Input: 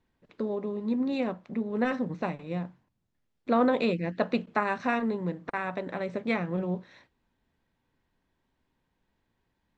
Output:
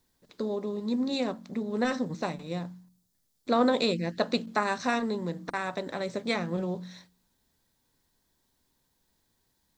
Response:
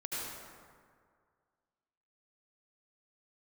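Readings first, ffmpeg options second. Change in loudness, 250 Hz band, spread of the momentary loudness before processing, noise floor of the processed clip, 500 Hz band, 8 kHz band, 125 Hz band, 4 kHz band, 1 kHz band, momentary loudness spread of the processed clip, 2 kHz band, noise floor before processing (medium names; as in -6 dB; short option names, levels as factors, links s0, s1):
0.0 dB, -1.0 dB, 9 LU, -74 dBFS, 0.0 dB, no reading, -1.0 dB, +9.0 dB, 0.0 dB, 11 LU, 0.0 dB, -78 dBFS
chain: -af "bandreject=f=45.2:t=h:w=4,bandreject=f=90.4:t=h:w=4,bandreject=f=135.6:t=h:w=4,bandreject=f=180.8:t=h:w=4,bandreject=f=226:t=h:w=4,bandreject=f=271.2:t=h:w=4,bandreject=f=316.4:t=h:w=4,aexciter=amount=5.9:drive=4.2:freq=3800"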